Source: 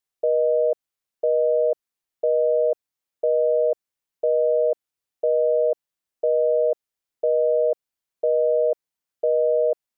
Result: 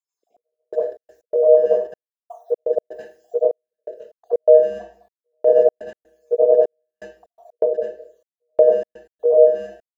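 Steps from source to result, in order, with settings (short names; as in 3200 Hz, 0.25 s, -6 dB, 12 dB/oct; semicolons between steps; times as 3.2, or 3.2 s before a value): random spectral dropouts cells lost 73%; level quantiser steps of 10 dB; 0.69–3.42 tilt +2 dB/oct; AGC gain up to 16.5 dB; HPF 480 Hz 12 dB/oct; speakerphone echo 0.21 s, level -19 dB; reverb RT60 0.45 s, pre-delay 72 ms, DRR -8.5 dB; step gate "xxx...xx.x.xx" 124 bpm -60 dB; mismatched tape noise reduction encoder only; gain -12 dB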